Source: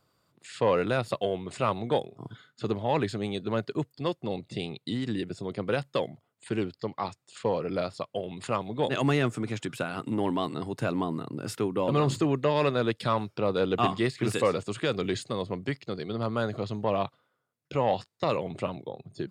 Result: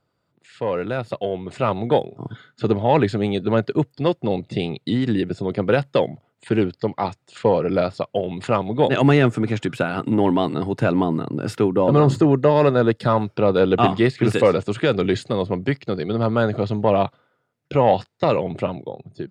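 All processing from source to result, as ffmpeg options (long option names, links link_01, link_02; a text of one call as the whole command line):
ffmpeg -i in.wav -filter_complex "[0:a]asettb=1/sr,asplit=3[link_01][link_02][link_03];[link_01]atrim=end=11.734[link_04];[link_02]atrim=start=11.73:end=13.22,asetpts=PTS-STARTPTS,afade=type=in:duration=0.004:curve=qsin,afade=type=out:start_time=1.486:duration=0.004:curve=qsin,equalizer=frequency=3000:width_type=o:width=0.9:gain=-6,bandreject=frequency=2300:width=10[link_05];[link_03]atrim=start=13.216[link_06];[link_04][link_05]acrossfade=duration=0.004:curve1=hsin:curve2=qsin[link_07];[link_07][link_06]acrossfade=duration=0.004:curve1=qsin:curve2=hsin,lowpass=frequency=2400:poles=1,bandreject=frequency=1100:width=9.4,dynaudnorm=framelen=620:gausssize=5:maxgain=11dB" out.wav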